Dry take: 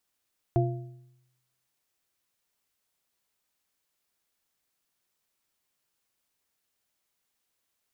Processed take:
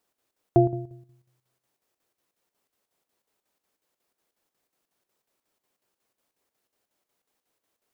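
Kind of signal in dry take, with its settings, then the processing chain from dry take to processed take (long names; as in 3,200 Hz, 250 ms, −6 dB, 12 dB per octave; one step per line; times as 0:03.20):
struck metal bar, lowest mode 127 Hz, modes 3, decay 0.89 s, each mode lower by 2.5 dB, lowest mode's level −20.5 dB
parametric band 440 Hz +11 dB 2.7 octaves
square-wave tremolo 5.5 Hz, depth 60%, duty 70%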